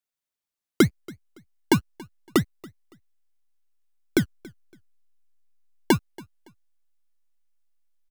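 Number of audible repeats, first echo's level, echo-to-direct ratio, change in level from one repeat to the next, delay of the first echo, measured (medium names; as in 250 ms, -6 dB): 2, -23.0 dB, -22.5 dB, -11.5 dB, 281 ms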